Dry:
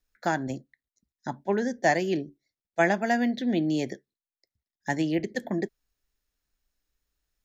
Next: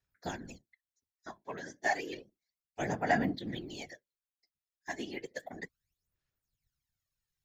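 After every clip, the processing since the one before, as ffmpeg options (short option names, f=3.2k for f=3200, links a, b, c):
-af "aphaser=in_gain=1:out_gain=1:delay=3.1:decay=0.74:speed=0.32:type=sinusoidal,afftfilt=real='hypot(re,im)*cos(2*PI*random(0))':imag='hypot(re,im)*sin(2*PI*random(1))':win_size=512:overlap=0.75,tiltshelf=f=690:g=-4.5,volume=-8dB"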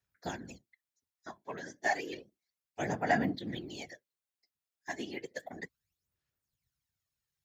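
-af "highpass=59"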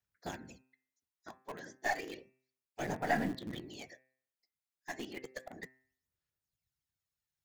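-filter_complex "[0:a]asplit=2[a][b];[b]acrusher=bits=3:dc=4:mix=0:aa=0.000001,volume=-8.5dB[c];[a][c]amix=inputs=2:normalize=0,bandreject=f=130:t=h:w=4,bandreject=f=260:t=h:w=4,bandreject=f=390:t=h:w=4,bandreject=f=520:t=h:w=4,bandreject=f=650:t=h:w=4,bandreject=f=780:t=h:w=4,bandreject=f=910:t=h:w=4,bandreject=f=1.04k:t=h:w=4,bandreject=f=1.17k:t=h:w=4,bandreject=f=1.3k:t=h:w=4,bandreject=f=1.43k:t=h:w=4,bandreject=f=1.56k:t=h:w=4,bandreject=f=1.69k:t=h:w=4,bandreject=f=1.82k:t=h:w=4,bandreject=f=1.95k:t=h:w=4,bandreject=f=2.08k:t=h:w=4,bandreject=f=2.21k:t=h:w=4,bandreject=f=2.34k:t=h:w=4,bandreject=f=2.47k:t=h:w=4,bandreject=f=2.6k:t=h:w=4,bandreject=f=2.73k:t=h:w=4,volume=-4.5dB"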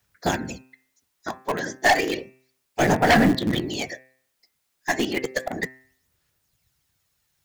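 -af "aeval=exprs='0.133*sin(PI/2*2.82*val(0)/0.133)':c=same,volume=6.5dB"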